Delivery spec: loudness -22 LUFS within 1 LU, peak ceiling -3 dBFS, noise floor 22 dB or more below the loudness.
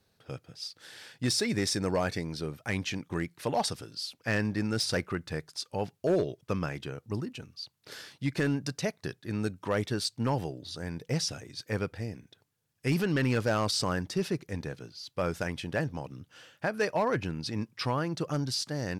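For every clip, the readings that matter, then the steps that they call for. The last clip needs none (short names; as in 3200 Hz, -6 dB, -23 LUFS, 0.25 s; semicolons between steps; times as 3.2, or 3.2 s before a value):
clipped 0.4%; flat tops at -20.5 dBFS; loudness -32.0 LUFS; peak -20.5 dBFS; loudness target -22.0 LUFS
-> clip repair -20.5 dBFS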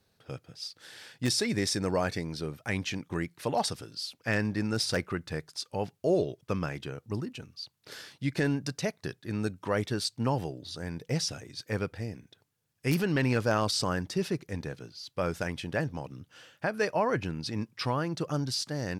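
clipped 0.0%; loudness -32.0 LUFS; peak -11.5 dBFS; loudness target -22.0 LUFS
-> gain +10 dB; limiter -3 dBFS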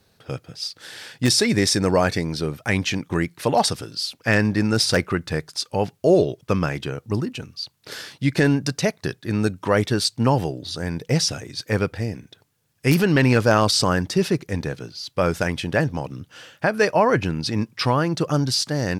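loudness -22.0 LUFS; peak -3.0 dBFS; noise floor -63 dBFS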